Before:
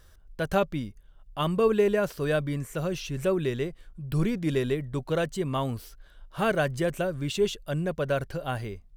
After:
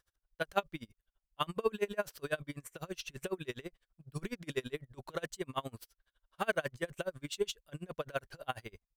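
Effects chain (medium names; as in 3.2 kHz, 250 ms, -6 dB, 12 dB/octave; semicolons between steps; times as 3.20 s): gate -39 dBFS, range -12 dB; bass shelf 460 Hz -12 dB; logarithmic tremolo 12 Hz, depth 31 dB; trim +1 dB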